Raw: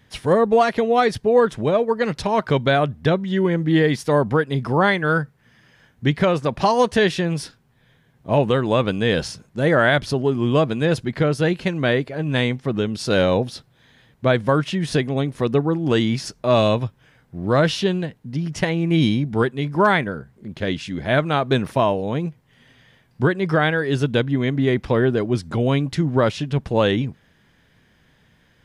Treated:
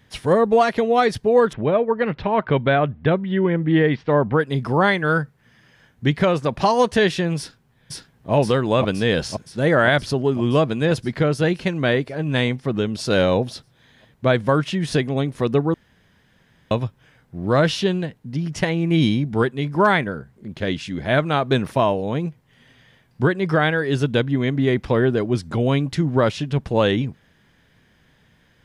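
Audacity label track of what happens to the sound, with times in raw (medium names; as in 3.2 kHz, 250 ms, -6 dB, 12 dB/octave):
1.530000	4.400000	low-pass 3.1 kHz 24 dB/octave
7.380000	8.320000	echo throw 520 ms, feedback 70%, level -0.5 dB
15.740000	16.710000	room tone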